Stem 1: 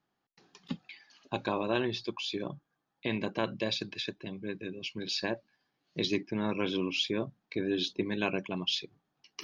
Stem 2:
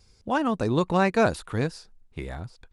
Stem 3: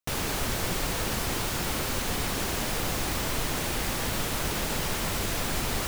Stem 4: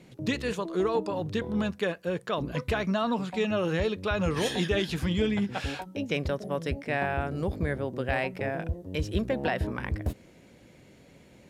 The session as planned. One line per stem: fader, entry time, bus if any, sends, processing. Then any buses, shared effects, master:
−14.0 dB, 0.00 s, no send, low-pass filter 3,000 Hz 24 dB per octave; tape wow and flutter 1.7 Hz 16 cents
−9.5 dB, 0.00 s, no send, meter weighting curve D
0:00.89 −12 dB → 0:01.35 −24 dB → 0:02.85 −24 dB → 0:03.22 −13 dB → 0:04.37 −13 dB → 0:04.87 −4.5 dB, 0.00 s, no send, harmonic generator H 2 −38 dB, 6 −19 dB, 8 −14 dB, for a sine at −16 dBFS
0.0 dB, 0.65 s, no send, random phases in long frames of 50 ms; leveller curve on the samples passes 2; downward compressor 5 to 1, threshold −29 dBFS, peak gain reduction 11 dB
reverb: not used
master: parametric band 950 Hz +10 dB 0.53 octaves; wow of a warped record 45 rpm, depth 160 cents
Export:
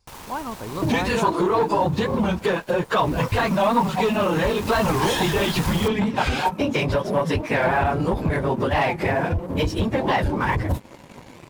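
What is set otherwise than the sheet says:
stem 2: missing meter weighting curve D
stem 4 0.0 dB → +8.5 dB

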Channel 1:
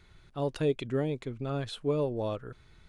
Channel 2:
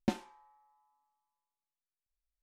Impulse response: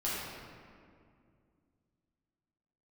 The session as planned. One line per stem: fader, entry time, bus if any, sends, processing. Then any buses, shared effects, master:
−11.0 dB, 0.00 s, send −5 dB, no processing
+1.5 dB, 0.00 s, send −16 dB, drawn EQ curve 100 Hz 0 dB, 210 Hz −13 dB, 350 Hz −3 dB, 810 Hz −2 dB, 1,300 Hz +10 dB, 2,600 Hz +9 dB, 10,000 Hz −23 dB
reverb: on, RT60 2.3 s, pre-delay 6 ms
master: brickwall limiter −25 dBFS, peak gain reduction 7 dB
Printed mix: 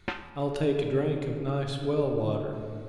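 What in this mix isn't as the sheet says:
stem 1 −11.0 dB → −2.0 dB
master: missing brickwall limiter −25 dBFS, peak gain reduction 7 dB

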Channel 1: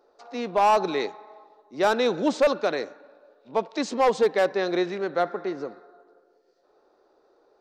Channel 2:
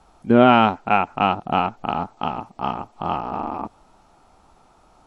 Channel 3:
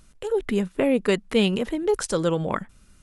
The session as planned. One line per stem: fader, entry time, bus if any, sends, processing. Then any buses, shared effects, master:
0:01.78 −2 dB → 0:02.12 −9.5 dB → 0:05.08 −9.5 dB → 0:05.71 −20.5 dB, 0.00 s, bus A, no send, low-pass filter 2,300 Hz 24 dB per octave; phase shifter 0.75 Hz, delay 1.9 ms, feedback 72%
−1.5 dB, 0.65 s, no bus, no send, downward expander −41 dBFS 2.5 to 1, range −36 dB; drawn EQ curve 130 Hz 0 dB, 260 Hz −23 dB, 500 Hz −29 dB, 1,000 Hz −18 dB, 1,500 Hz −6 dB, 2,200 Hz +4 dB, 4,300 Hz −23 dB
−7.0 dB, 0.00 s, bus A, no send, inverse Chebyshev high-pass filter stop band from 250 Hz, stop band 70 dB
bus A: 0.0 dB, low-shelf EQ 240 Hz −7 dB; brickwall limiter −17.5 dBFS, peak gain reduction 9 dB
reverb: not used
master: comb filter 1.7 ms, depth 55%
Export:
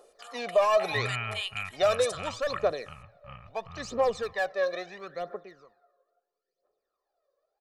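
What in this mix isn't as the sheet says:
stem 1: missing low-pass filter 2,300 Hz 24 dB per octave
stem 2 −1.5 dB → −10.5 dB

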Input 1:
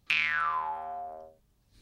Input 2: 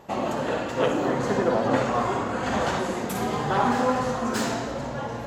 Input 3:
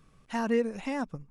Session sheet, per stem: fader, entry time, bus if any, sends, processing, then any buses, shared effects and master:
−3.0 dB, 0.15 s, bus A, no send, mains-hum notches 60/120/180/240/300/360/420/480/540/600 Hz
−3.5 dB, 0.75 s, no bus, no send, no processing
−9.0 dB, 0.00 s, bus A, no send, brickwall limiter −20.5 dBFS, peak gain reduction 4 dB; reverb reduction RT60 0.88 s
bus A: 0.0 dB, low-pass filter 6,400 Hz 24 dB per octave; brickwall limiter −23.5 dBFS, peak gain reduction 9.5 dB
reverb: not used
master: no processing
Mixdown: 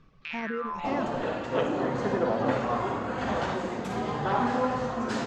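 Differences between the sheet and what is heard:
stem 3 −9.0 dB → +2.5 dB
master: extra high-frequency loss of the air 100 metres

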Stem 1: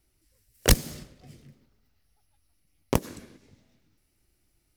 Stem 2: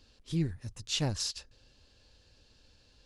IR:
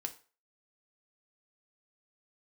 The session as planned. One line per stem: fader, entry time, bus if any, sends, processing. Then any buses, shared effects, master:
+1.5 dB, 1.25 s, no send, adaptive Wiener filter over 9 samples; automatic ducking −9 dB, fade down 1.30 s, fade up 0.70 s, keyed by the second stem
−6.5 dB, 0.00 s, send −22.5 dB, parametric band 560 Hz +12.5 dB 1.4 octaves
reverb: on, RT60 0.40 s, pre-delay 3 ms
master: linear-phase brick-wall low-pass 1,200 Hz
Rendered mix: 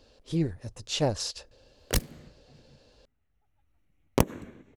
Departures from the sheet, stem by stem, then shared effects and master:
stem 2 −6.5 dB → 0.0 dB
master: missing linear-phase brick-wall low-pass 1,200 Hz

